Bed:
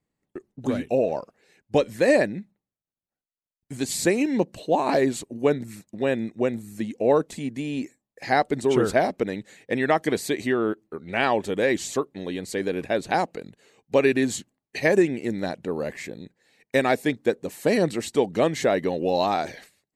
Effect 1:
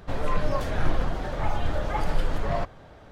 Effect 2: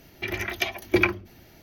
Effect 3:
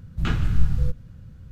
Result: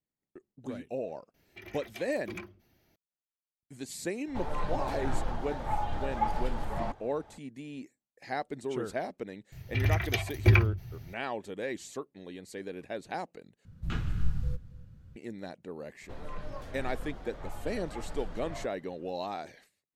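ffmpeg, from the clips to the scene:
ffmpeg -i bed.wav -i cue0.wav -i cue1.wav -i cue2.wav -filter_complex "[2:a]asplit=2[link_01][link_02];[1:a]asplit=2[link_03][link_04];[0:a]volume=-13.5dB[link_05];[link_01]asoftclip=type=tanh:threshold=-17.5dB[link_06];[link_03]equalizer=frequency=850:width_type=o:width=0.25:gain=12[link_07];[link_02]lowshelf=frequency=180:width_type=q:width=3:gain=12.5[link_08];[3:a]aecho=1:1:277:0.0944[link_09];[link_05]asplit=2[link_10][link_11];[link_10]atrim=end=13.654[link_12];[link_09]atrim=end=1.51,asetpts=PTS-STARTPTS,volume=-9.5dB[link_13];[link_11]atrim=start=15.156[link_14];[link_06]atrim=end=1.62,asetpts=PTS-STARTPTS,volume=-17dB,afade=type=in:duration=0.004:curve=hsin,afade=type=out:start_time=1.616:duration=0.004:curve=hsin,adelay=1340[link_15];[link_07]atrim=end=3.11,asetpts=PTS-STARTPTS,volume=-8.5dB,afade=type=in:duration=0.004:curve=hsin,afade=type=out:start_time=3.106:duration=0.004:curve=hsin,adelay=4270[link_16];[link_08]atrim=end=1.62,asetpts=PTS-STARTPTS,volume=-5dB,afade=type=in:duration=0.004:curve=hsin,afade=type=out:start_time=1.616:duration=0.004:curve=hsin,adelay=9520[link_17];[link_04]atrim=end=3.11,asetpts=PTS-STARTPTS,volume=-15dB,afade=type=in:duration=0.004:curve=hsin,afade=type=out:start_time=3.106:duration=0.004:curve=hsin,adelay=16010[link_18];[link_12][link_13]acrossfade=duration=0.004:curve1=hsin:curve2=hsin[link_19];[link_19][link_14]acrossfade=duration=0.004:curve1=hsin:curve2=hsin[link_20];[link_20][link_15][link_16][link_17][link_18]amix=inputs=5:normalize=0" out.wav

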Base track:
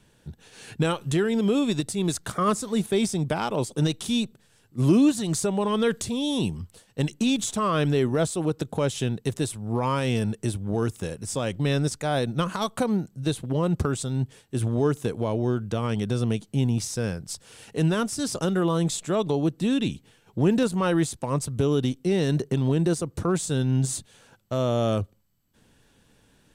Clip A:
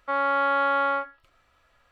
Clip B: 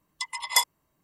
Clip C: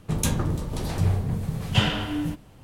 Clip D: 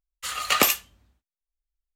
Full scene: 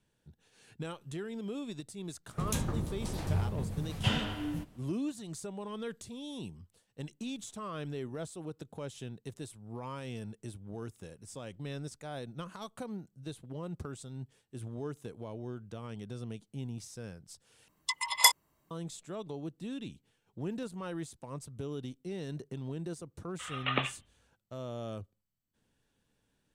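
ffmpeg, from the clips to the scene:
ffmpeg -i bed.wav -i cue0.wav -i cue1.wav -i cue2.wav -i cue3.wav -filter_complex "[0:a]volume=-16.5dB[link_01];[4:a]aresample=8000,aresample=44100[link_02];[link_01]asplit=2[link_03][link_04];[link_03]atrim=end=17.684[link_05];[2:a]atrim=end=1.03[link_06];[link_04]atrim=start=18.706[link_07];[3:a]atrim=end=2.63,asetpts=PTS-STARTPTS,volume=-8.5dB,afade=type=in:duration=0.004:curve=hsin,afade=type=out:start_time=2.626:duration=0.004:curve=hsin,adelay=2290[link_08];[link_02]atrim=end=1.95,asetpts=PTS-STARTPTS,volume=-10dB,afade=type=in:duration=0.004:curve=hsin,afade=type=out:start_time=1.946:duration=0.004:curve=hsin,adelay=23160[link_09];[link_05][link_06]acrossfade=duration=0.004:curve1=hsin:curve2=hsin[link_10];[link_10][link_07]acrossfade=duration=0.004:curve1=hsin:curve2=hsin[link_11];[link_11][link_08][link_09]amix=inputs=3:normalize=0" out.wav

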